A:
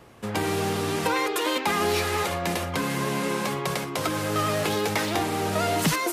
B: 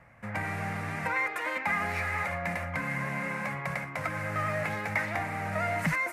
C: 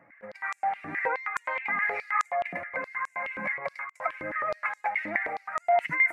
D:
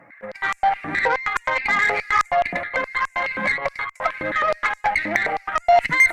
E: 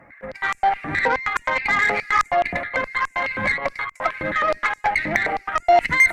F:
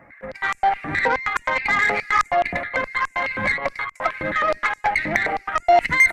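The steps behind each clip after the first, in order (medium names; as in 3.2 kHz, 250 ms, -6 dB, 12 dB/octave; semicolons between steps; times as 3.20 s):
FFT filter 160 Hz 0 dB, 280 Hz -8 dB, 390 Hz -19 dB, 570 Hz -1 dB, 1.1 kHz -3 dB, 2.1 kHz +7 dB, 3.2 kHz -16 dB, 9 kHz -12 dB, 14 kHz -15 dB; trim -4 dB
spectral contrast enhancement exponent 1.6; step-sequenced high-pass 9.5 Hz 300–7200 Hz
in parallel at +3 dB: peak limiter -21 dBFS, peak gain reduction 9.5 dB; on the sum: Chebyshev shaper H 3 -19 dB, 8 -30 dB, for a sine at -7 dBFS; trim +5 dB
octave divider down 1 oct, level -3 dB
resampled via 32 kHz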